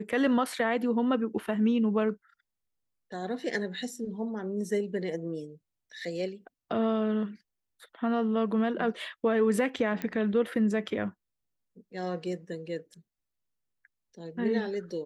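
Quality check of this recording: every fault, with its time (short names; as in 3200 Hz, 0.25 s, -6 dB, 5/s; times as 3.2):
10.02 pop -19 dBFS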